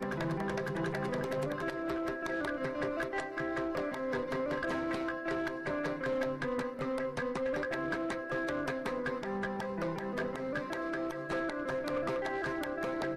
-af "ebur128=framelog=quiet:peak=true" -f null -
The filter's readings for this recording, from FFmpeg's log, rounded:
Integrated loudness:
  I:         -35.3 LUFS
  Threshold: -45.3 LUFS
Loudness range:
  LRA:         1.1 LU
  Threshold: -55.3 LUFS
  LRA low:   -36.0 LUFS
  LRA high:  -34.9 LUFS
True peak:
  Peak:      -22.2 dBFS